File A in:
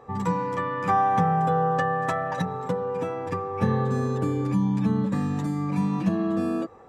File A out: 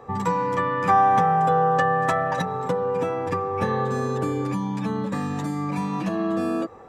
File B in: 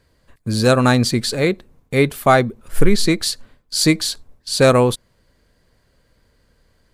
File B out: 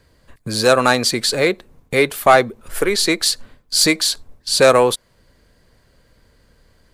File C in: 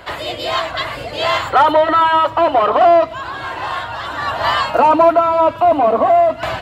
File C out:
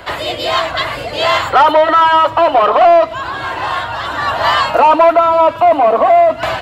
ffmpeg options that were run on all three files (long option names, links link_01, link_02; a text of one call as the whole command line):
ffmpeg -i in.wav -filter_complex "[0:a]acrossover=split=370|2500[link_01][link_02][link_03];[link_01]acompressor=threshold=-32dB:ratio=6[link_04];[link_04][link_02][link_03]amix=inputs=3:normalize=0,asoftclip=type=tanh:threshold=-5.5dB,volume=4.5dB" out.wav